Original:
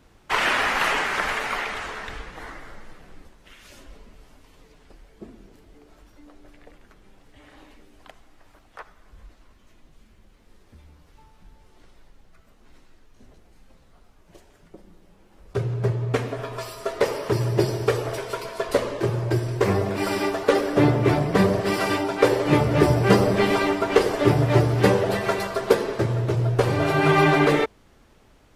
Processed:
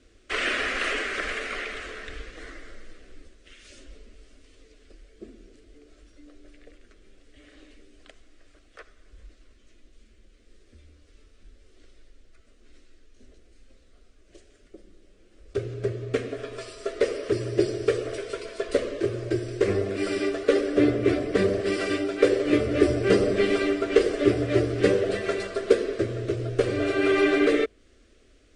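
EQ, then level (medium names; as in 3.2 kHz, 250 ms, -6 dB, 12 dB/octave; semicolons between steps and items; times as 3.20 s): steep low-pass 9.6 kHz 96 dB/octave; dynamic bell 5.9 kHz, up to -5 dB, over -45 dBFS, Q 0.71; static phaser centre 370 Hz, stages 4; 0.0 dB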